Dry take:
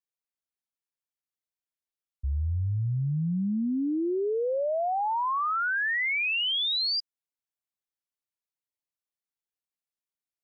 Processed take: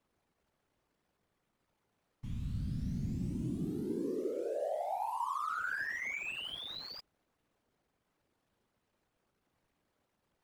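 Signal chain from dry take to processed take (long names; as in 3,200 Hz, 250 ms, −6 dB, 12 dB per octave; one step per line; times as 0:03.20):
linear delta modulator 64 kbit/s, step −42.5 dBFS
slack as between gear wheels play −40 dBFS
random phases in short frames
level −9 dB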